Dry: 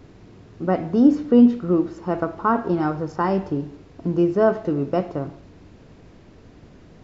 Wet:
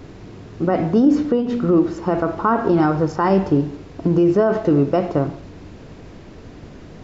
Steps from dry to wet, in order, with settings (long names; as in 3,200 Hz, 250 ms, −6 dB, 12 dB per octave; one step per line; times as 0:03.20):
brickwall limiter −15.5 dBFS, peak gain reduction 11 dB
mains-hum notches 60/120/180/240 Hz
level +8.5 dB